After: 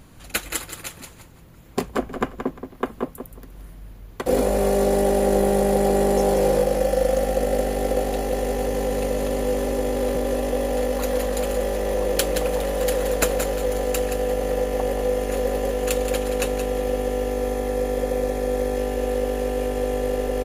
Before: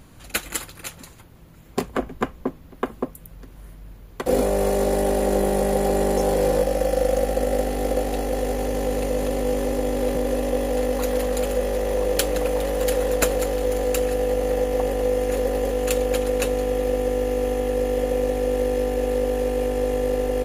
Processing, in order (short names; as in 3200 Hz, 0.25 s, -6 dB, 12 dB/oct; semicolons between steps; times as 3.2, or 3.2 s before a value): 17.3–18.77 notch 2900 Hz, Q 8.1; feedback echo 0.175 s, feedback 24%, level -9 dB